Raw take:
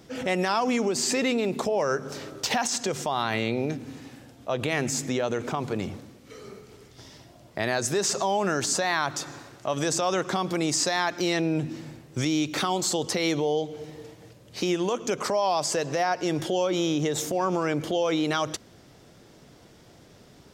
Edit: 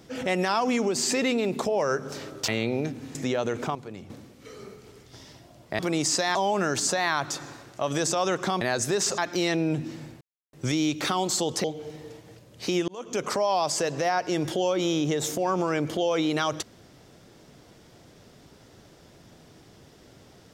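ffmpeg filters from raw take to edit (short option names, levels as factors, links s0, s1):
-filter_complex "[0:a]asplit=12[s0][s1][s2][s3][s4][s5][s6][s7][s8][s9][s10][s11];[s0]atrim=end=2.482[s12];[s1]atrim=start=3.328:end=4.002[s13];[s2]atrim=start=4.998:end=5.602[s14];[s3]atrim=start=5.598:end=5.952,asetpts=PTS-STARTPTS,volume=0.299[s15];[s4]atrim=start=5.948:end=7.642[s16];[s5]atrim=start=10.468:end=11.032[s17];[s6]atrim=start=8.208:end=10.472[s18];[s7]atrim=start=7.638:end=8.212[s19];[s8]atrim=start=11.028:end=12.06,asetpts=PTS-STARTPTS,afade=t=out:st=1.028:d=0.004:c=hsin,apad=pad_dur=0.32[s20];[s9]atrim=start=12.06:end=13.172,asetpts=PTS-STARTPTS,afade=t=in:d=0.004:c=hsin[s21];[s10]atrim=start=13.578:end=14.82,asetpts=PTS-STARTPTS,afade=t=out:st=1.238:d=0.004:c=hsin[s22];[s11]atrim=start=14.82,asetpts=PTS-STARTPTS,afade=t=in:d=0.34[s23];[s12][s13]acrossfade=d=0.004:c1=hsin:c2=hsin[s24];[s24][s14]acrossfade=d=0.004:c1=hsin:c2=hsin[s25];[s25][s15]acrossfade=d=0.004:c1=hsin:c2=hsin[s26];[s26][s16]acrossfade=d=0.004:c1=hsin:c2=hsin[s27];[s27][s17]acrossfade=d=0.004:c1=hsin:c2=hsin[s28];[s28][s18]acrossfade=d=0.004:c1=hsin:c2=hsin[s29];[s29][s19]acrossfade=d=0.004:c1=hsin:c2=hsin[s30];[s20][s21]concat=n=2:v=0:a=1[s31];[s30][s31]acrossfade=d=0.004:c1=hsin:c2=hsin[s32];[s22][s23]concat=n=2:v=0:a=1[s33];[s32][s33]acrossfade=d=0.004:c1=hsin:c2=hsin"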